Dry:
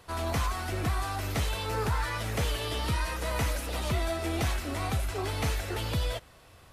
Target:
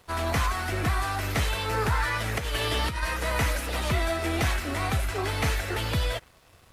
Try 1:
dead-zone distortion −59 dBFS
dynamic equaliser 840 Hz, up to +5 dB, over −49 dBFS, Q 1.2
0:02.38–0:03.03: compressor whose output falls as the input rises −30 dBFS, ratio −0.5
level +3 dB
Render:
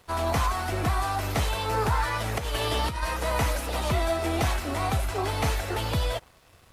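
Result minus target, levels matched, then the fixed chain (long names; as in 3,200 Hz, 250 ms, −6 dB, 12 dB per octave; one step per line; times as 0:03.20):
2,000 Hz band −3.5 dB
dead-zone distortion −59 dBFS
dynamic equaliser 1,800 Hz, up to +5 dB, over −49 dBFS, Q 1.2
0:02.38–0:03.03: compressor whose output falls as the input rises −30 dBFS, ratio −0.5
level +3 dB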